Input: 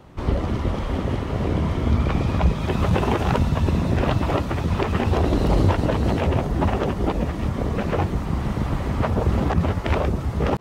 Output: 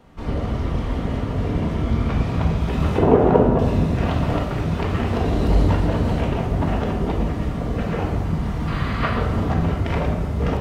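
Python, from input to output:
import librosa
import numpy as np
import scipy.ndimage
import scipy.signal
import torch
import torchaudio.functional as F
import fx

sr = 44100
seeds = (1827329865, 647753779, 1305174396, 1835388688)

y = fx.curve_eq(x, sr, hz=(120.0, 420.0, 4400.0), db=(0, 14, -13), at=(2.98, 3.59))
y = fx.spec_box(y, sr, start_s=8.68, length_s=0.53, low_hz=1000.0, high_hz=5000.0, gain_db=9)
y = fx.room_shoebox(y, sr, seeds[0], volume_m3=620.0, walls='mixed', distance_m=1.7)
y = F.gain(torch.from_numpy(y), -5.0).numpy()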